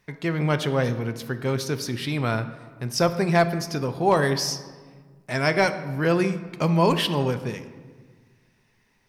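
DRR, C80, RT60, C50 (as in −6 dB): 9.5 dB, 13.5 dB, 1.6 s, 12.5 dB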